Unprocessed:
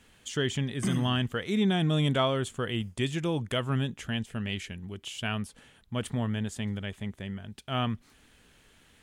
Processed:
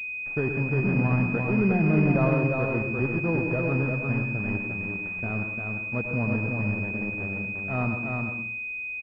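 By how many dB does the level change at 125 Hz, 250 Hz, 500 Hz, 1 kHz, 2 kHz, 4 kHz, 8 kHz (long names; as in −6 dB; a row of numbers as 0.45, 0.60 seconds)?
+4.5 dB, +4.5 dB, +4.5 dB, +1.0 dB, +10.0 dB, below −20 dB, below −25 dB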